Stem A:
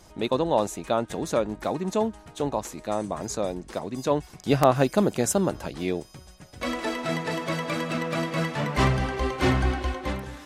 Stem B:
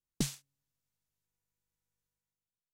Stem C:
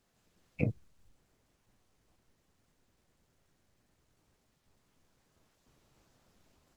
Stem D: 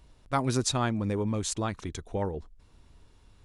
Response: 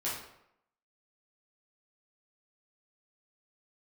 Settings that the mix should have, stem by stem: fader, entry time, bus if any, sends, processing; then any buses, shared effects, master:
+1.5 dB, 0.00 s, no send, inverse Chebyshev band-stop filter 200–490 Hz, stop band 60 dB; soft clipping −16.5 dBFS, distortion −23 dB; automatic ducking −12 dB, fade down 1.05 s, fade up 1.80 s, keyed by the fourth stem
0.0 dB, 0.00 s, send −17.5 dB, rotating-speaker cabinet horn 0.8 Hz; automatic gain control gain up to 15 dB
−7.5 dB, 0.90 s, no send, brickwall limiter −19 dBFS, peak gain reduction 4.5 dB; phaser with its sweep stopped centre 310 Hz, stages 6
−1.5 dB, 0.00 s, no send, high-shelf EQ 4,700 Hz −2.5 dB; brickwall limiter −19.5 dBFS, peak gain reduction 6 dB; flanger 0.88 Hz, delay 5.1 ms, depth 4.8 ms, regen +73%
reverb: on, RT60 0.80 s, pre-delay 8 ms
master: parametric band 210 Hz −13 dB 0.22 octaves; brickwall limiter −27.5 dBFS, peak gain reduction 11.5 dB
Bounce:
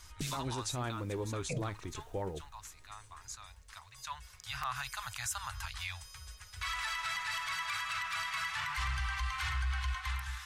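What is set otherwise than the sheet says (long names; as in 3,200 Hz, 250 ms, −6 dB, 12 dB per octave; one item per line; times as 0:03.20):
stem B 0.0 dB → +6.5 dB
stem C −7.5 dB → +4.5 dB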